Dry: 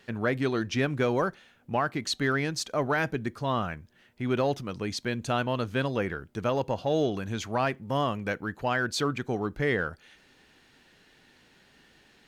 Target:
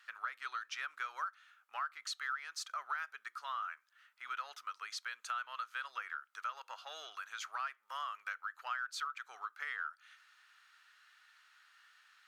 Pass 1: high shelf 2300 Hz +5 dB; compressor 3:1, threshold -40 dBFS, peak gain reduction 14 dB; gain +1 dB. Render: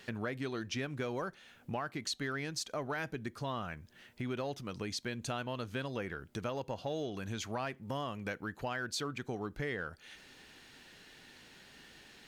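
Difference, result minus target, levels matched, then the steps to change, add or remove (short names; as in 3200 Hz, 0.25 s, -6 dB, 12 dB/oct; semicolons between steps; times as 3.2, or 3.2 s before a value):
1000 Hz band -5.0 dB
add first: ladder high-pass 1200 Hz, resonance 75%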